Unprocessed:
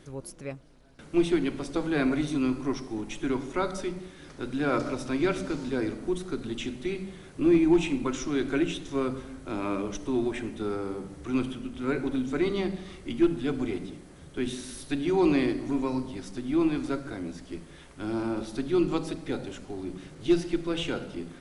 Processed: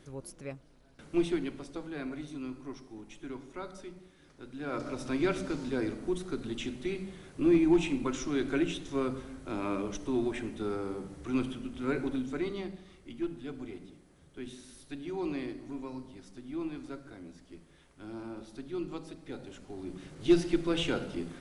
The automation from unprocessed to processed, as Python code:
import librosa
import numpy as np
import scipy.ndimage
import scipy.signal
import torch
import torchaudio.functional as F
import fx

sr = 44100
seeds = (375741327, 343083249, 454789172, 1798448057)

y = fx.gain(x, sr, db=fx.line((1.15, -4.0), (1.94, -13.0), (4.53, -13.0), (5.08, -3.0), (12.03, -3.0), (12.87, -12.0), (19.16, -12.0), (20.36, 0.0)))